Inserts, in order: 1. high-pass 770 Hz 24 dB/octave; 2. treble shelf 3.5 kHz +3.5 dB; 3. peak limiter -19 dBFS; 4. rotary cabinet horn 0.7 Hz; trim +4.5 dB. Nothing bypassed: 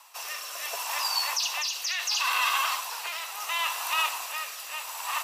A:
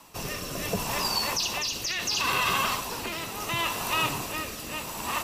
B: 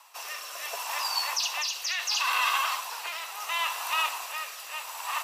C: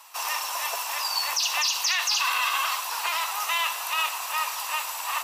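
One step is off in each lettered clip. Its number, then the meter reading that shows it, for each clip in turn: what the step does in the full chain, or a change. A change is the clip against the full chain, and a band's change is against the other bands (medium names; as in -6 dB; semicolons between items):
1, 500 Hz band +10.5 dB; 2, 8 kHz band -1.5 dB; 4, crest factor change -3.5 dB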